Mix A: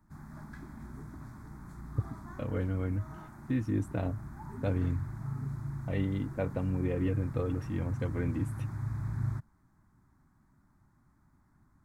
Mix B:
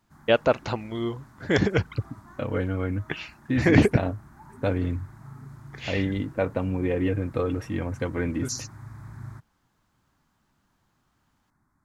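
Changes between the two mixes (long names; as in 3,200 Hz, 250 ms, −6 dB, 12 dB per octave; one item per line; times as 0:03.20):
first voice: unmuted
second voice +10.5 dB
master: add low-shelf EQ 280 Hz −8.5 dB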